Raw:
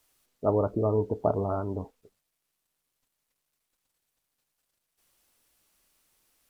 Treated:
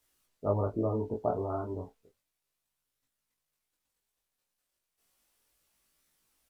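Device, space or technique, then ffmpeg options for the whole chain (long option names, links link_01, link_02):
double-tracked vocal: -filter_complex "[0:a]asplit=2[link_01][link_02];[link_02]adelay=18,volume=-5dB[link_03];[link_01][link_03]amix=inputs=2:normalize=0,flanger=delay=18.5:depth=5.1:speed=0.33,volume=-2.5dB"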